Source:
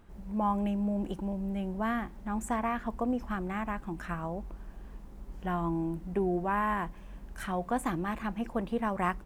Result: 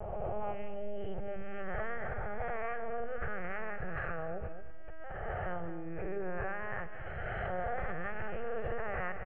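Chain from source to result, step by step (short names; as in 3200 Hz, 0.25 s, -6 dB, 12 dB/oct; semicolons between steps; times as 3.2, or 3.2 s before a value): spectral swells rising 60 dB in 1.54 s; notches 50/100/150/200/250/300/350 Hz; compressor 3:1, threshold -33 dBFS, peak gain reduction 8 dB; LPC vocoder at 8 kHz pitch kept; fixed phaser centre 1000 Hz, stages 6; feedback echo 0.224 s, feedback 25%, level -11.5 dB; sustainer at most 24 dB/s; gain +1 dB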